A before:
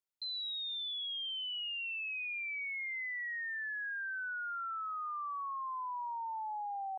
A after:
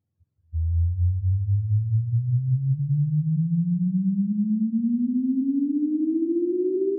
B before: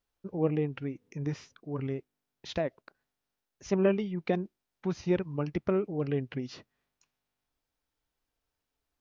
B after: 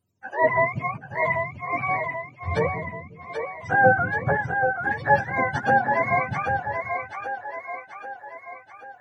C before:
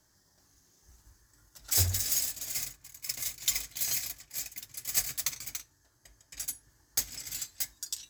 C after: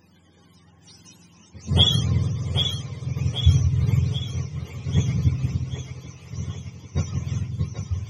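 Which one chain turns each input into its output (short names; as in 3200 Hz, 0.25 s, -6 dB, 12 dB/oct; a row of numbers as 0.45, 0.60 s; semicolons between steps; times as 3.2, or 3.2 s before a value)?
spectrum mirrored in octaves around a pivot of 550 Hz; split-band echo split 350 Hz, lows 0.178 s, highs 0.784 s, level -6 dB; match loudness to -24 LUFS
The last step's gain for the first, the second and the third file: +15.5, +10.0, +16.5 dB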